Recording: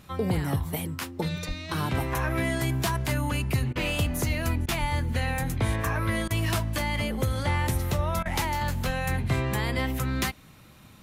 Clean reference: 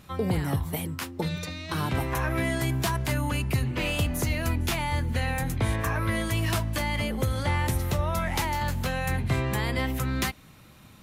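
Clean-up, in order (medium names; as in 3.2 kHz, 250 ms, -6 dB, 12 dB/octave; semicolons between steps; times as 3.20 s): 1.47–1.59 s: high-pass 140 Hz 24 dB/octave; 4.80–4.92 s: high-pass 140 Hz 24 dB/octave; 8.86–8.98 s: high-pass 140 Hz 24 dB/octave; interpolate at 3.73/4.66/6.28/8.23 s, 24 ms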